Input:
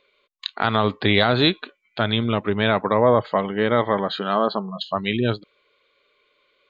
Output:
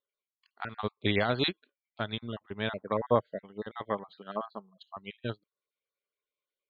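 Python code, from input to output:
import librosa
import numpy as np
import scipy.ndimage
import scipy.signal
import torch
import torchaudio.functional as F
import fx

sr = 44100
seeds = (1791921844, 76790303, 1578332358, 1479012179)

y = fx.spec_dropout(x, sr, seeds[0], share_pct=27)
y = fx.upward_expand(y, sr, threshold_db=-32.0, expansion=2.5)
y = y * librosa.db_to_amplitude(-4.5)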